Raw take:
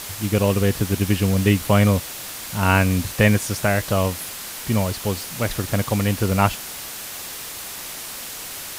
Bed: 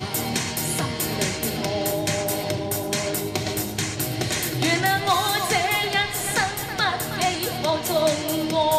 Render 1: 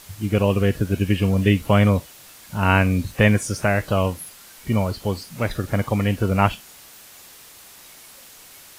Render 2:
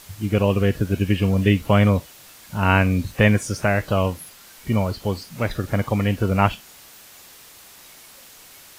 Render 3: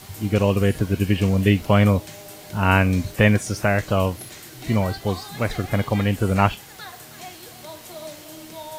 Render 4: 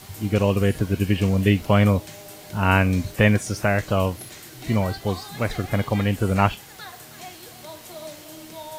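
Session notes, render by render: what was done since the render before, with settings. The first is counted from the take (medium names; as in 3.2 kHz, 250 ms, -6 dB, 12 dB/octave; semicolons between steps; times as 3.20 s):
noise print and reduce 12 dB
dynamic bell 10 kHz, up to -4 dB, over -48 dBFS, Q 1.3
add bed -16.5 dB
trim -1 dB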